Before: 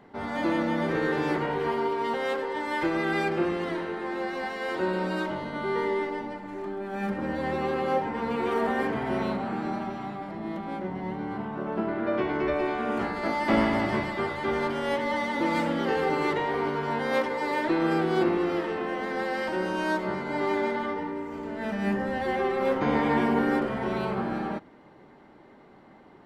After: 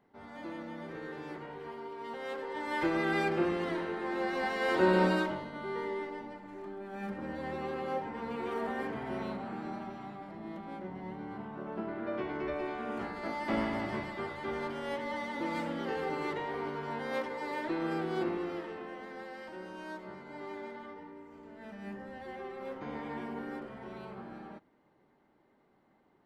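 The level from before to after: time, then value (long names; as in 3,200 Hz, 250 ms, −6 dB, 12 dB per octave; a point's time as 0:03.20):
0:01.86 −16 dB
0:02.84 −3.5 dB
0:04.01 −3.5 dB
0:05.04 +3.5 dB
0:05.50 −9 dB
0:18.29 −9 dB
0:19.38 −16 dB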